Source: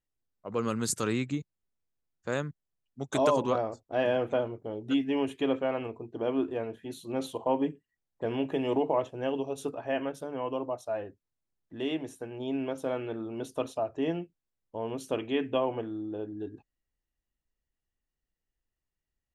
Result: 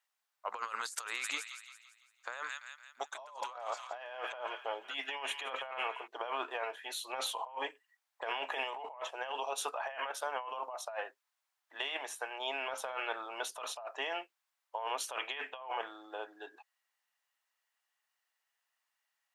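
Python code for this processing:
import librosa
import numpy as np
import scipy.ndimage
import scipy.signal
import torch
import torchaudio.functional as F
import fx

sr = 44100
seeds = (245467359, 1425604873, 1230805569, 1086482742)

y = fx.echo_wet_highpass(x, sr, ms=169, feedback_pct=47, hz=2000.0, wet_db=-12, at=(1.07, 6.06), fade=0.02)
y = scipy.signal.sosfilt(scipy.signal.butter(4, 840.0, 'highpass', fs=sr, output='sos'), y)
y = fx.high_shelf(y, sr, hz=3100.0, db=-7.0)
y = fx.over_compress(y, sr, threshold_db=-48.0, ratio=-1.0)
y = y * 10.0 ** (8.0 / 20.0)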